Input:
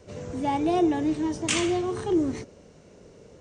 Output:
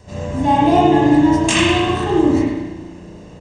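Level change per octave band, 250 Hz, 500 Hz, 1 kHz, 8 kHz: +11.0, +9.5, +14.0, +7.0 decibels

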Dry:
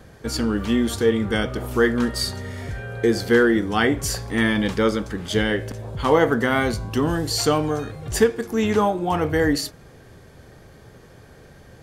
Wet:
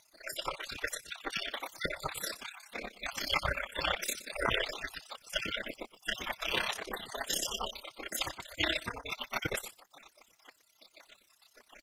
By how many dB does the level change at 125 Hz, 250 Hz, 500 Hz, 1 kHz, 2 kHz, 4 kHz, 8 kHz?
−22.0, −26.5, −20.5, −13.0, −10.0, −5.5, −8.5 decibels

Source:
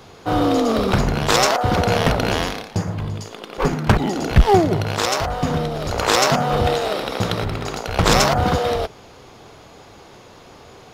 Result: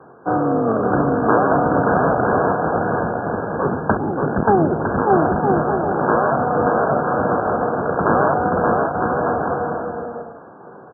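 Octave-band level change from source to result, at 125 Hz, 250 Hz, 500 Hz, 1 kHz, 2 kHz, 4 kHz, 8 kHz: −3.5 dB, +2.5 dB, +3.0 dB, +3.5 dB, 0.0 dB, below −40 dB, below −40 dB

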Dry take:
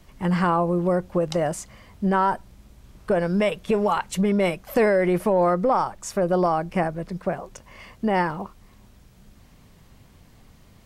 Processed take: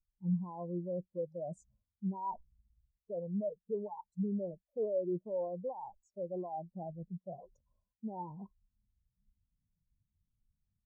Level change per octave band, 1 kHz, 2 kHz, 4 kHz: −20.5 dB, below −40 dB, below −40 dB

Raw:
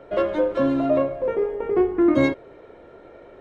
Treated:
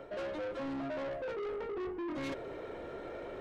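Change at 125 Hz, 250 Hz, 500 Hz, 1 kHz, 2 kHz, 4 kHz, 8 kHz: −16.5 dB, −18.5 dB, −16.5 dB, −13.0 dB, −12.0 dB, −9.0 dB, can't be measured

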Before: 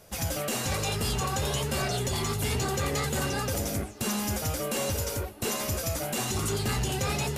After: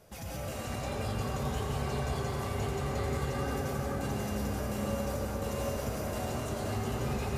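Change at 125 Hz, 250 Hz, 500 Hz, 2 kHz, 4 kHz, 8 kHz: −3.0, −2.5, −3.0, −7.0, −11.5, −13.0 decibels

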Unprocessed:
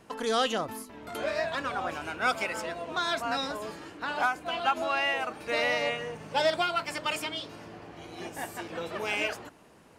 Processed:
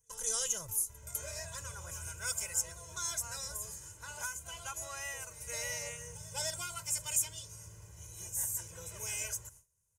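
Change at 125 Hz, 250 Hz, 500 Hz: −0.5, −21.5, −17.5 decibels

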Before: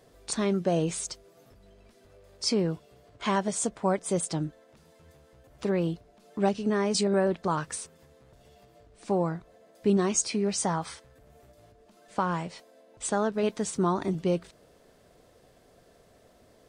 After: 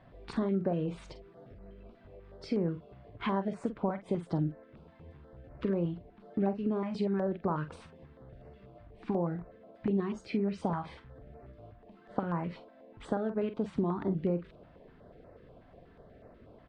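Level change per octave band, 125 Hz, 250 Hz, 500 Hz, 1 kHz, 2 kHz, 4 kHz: −2.5, −3.0, −6.0, −7.0, −9.0, −16.0 decibels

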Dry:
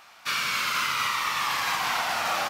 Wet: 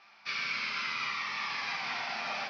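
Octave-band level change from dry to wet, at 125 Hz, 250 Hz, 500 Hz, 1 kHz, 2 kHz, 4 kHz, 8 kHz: −9.5, −6.5, −9.5, −11.0, −6.0, −8.5, −17.5 decibels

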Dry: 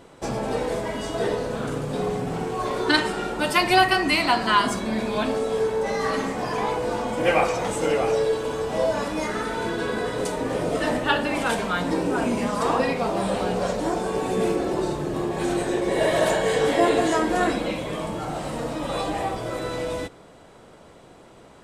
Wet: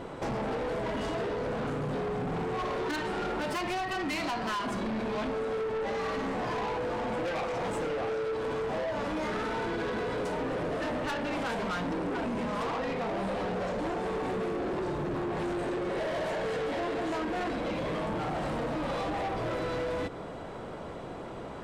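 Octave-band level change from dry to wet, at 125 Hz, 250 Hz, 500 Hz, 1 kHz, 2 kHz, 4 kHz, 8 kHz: −6.0, −7.5, −8.0, −8.5, −9.5, −12.0, −14.0 decibels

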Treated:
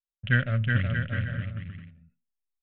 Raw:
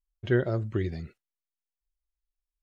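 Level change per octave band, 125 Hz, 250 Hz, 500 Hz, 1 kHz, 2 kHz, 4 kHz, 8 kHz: +6.5 dB, −1.0 dB, −10.0 dB, +4.5 dB, +11.0 dB, +8.5 dB, can't be measured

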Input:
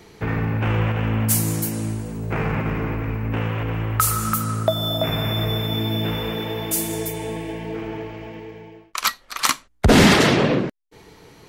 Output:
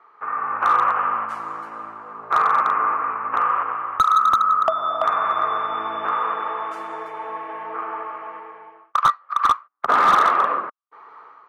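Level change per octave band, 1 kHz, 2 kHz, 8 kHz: +10.5 dB, −2.0 dB, below −15 dB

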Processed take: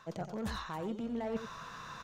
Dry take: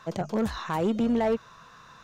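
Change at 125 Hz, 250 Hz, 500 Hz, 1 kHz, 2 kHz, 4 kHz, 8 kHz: −9.0 dB, −12.0 dB, −12.0 dB, −9.0 dB, −6.5 dB, −5.5 dB, can't be measured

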